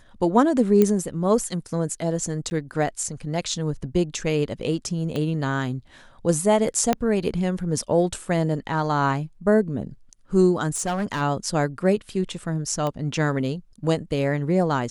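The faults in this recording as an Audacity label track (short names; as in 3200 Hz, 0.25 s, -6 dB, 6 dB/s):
0.820000	0.820000	pop -7 dBFS
2.500000	2.510000	gap 10 ms
5.160000	5.160000	pop -16 dBFS
6.930000	6.930000	pop -7 dBFS
10.750000	11.220000	clipped -21 dBFS
12.870000	12.870000	pop -15 dBFS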